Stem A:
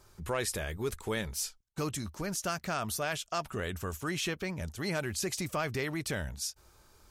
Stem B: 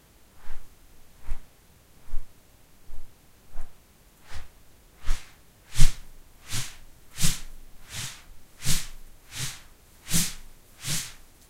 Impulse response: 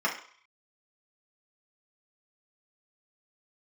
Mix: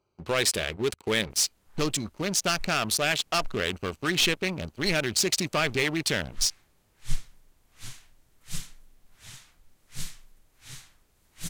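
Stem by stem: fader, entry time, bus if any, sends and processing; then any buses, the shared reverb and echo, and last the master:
-3.0 dB, 0.00 s, no send, Wiener smoothing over 25 samples; weighting filter D; sample leveller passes 3
-11.5 dB, 1.30 s, no send, dry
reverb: off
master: dry

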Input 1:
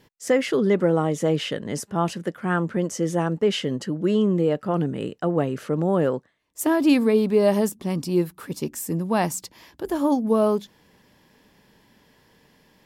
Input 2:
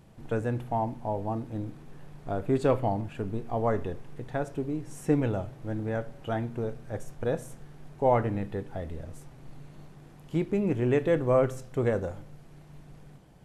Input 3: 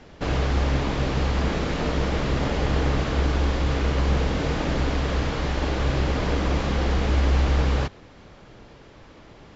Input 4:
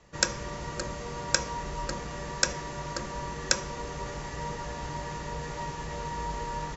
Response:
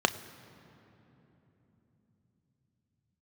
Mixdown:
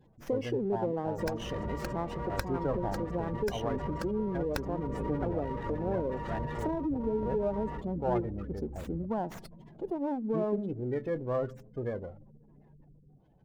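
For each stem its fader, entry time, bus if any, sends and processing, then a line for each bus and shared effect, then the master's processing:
-8.0 dB, 0.00 s, bus A, send -23.5 dB, median filter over 3 samples
-8.5 dB, 0.00 s, no bus, no send, high shelf 2300 Hz +7.5 dB
-12.5 dB, 1.20 s, no bus, no send, compressor 6:1, threshold -29 dBFS, peak gain reduction 12.5 dB
+1.5 dB, 1.05 s, bus A, no send, dry
bus A: 0.0 dB, compressor 12:1, threshold -31 dBFS, peak gain reduction 16 dB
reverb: on, RT60 3.5 s, pre-delay 3 ms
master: spectral gate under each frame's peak -20 dB strong; running maximum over 5 samples

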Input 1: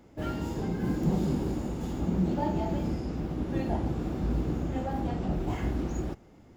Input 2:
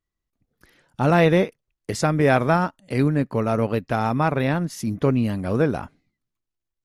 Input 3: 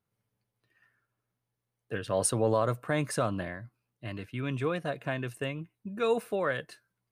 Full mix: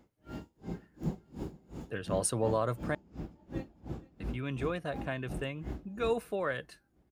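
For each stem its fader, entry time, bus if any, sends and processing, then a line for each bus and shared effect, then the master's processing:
-6.0 dB, 0.00 s, no send, echo send -21 dB, dB-linear tremolo 2.8 Hz, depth 36 dB
off
-3.5 dB, 0.00 s, muted 2.95–4.2, no send, no echo send, dry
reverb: off
echo: feedback echo 0.464 s, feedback 52%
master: dry

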